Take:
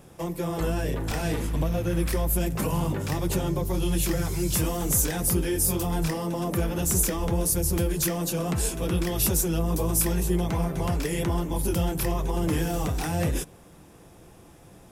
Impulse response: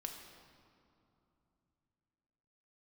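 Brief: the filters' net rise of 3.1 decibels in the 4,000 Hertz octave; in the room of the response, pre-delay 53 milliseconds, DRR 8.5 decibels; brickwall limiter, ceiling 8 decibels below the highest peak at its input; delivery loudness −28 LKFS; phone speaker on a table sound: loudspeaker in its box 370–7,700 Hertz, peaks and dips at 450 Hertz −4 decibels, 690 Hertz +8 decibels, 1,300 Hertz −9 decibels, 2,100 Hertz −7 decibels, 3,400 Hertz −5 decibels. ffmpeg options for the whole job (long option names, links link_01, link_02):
-filter_complex "[0:a]equalizer=frequency=4000:width_type=o:gain=7.5,alimiter=limit=-17dB:level=0:latency=1,asplit=2[link_01][link_02];[1:a]atrim=start_sample=2205,adelay=53[link_03];[link_02][link_03]afir=irnorm=-1:irlink=0,volume=-6dB[link_04];[link_01][link_04]amix=inputs=2:normalize=0,highpass=frequency=370:width=0.5412,highpass=frequency=370:width=1.3066,equalizer=frequency=450:width_type=q:width=4:gain=-4,equalizer=frequency=690:width_type=q:width=4:gain=8,equalizer=frequency=1300:width_type=q:width=4:gain=-9,equalizer=frequency=2100:width_type=q:width=4:gain=-7,equalizer=frequency=3400:width_type=q:width=4:gain=-5,lowpass=frequency=7700:width=0.5412,lowpass=frequency=7700:width=1.3066,volume=3.5dB"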